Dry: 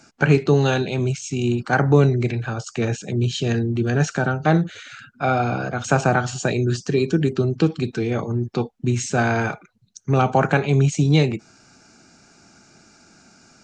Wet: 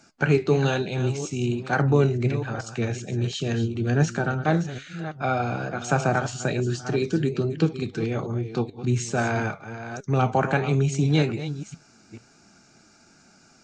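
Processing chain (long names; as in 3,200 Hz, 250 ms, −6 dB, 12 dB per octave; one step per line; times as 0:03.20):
delay that plays each chunk backwards 435 ms, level −11 dB
flanger 1.2 Hz, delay 4.6 ms, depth 5.9 ms, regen +77%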